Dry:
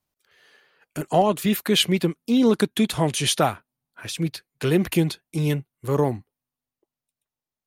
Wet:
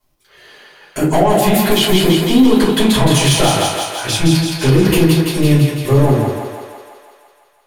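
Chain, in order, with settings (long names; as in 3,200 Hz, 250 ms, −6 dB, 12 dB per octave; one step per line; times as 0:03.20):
downward compressor, threshold −21 dBFS, peak gain reduction 8.5 dB
soft clipping −21 dBFS, distortion −14 dB
feedback echo with a high-pass in the loop 167 ms, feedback 69%, high-pass 370 Hz, level −3.5 dB
convolution reverb RT60 0.35 s, pre-delay 3 ms, DRR −8 dB
boost into a limiter +5.5 dB
level −1 dB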